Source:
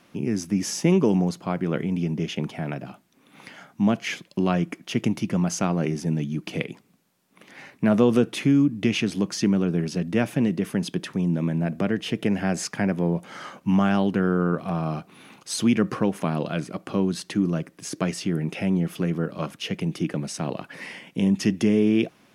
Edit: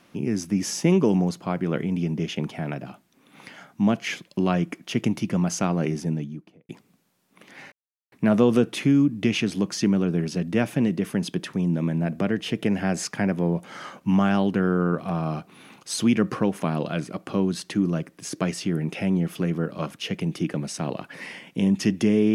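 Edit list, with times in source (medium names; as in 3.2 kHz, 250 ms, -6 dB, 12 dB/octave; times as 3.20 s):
5.92–6.69 s: studio fade out
7.72 s: insert silence 0.40 s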